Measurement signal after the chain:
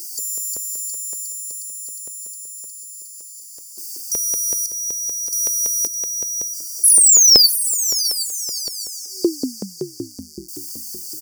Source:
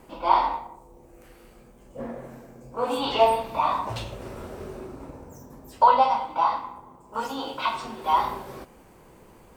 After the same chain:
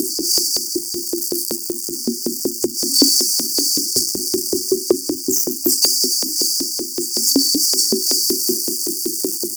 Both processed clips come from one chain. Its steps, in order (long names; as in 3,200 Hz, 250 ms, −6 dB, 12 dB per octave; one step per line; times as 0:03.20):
low-shelf EQ 250 Hz +5.5 dB
comb filter 3.3 ms, depth 67%
power curve on the samples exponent 0.35
repeating echo 609 ms, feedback 33%, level −12 dB
in parallel at −2.5 dB: downward compressor, threshold −27 dBFS
on the sum: brick-wall band-stop 380–4,500 Hz
auto-filter high-pass saw up 5.3 Hz 450–4,300 Hz
soft clipping −6.5 dBFS
level +7.5 dB